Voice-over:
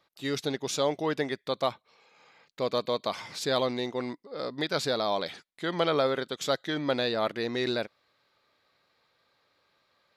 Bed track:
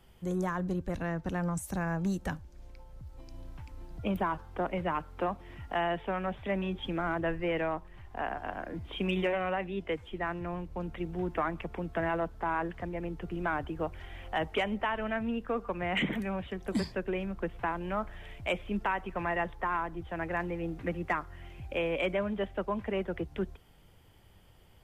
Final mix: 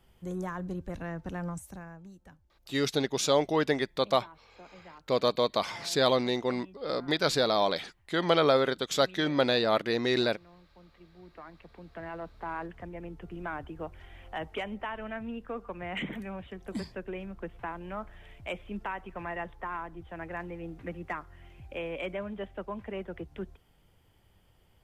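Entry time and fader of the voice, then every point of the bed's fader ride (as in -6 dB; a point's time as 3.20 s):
2.50 s, +2.5 dB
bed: 1.50 s -3.5 dB
2.11 s -19.5 dB
11.14 s -19.5 dB
12.49 s -5 dB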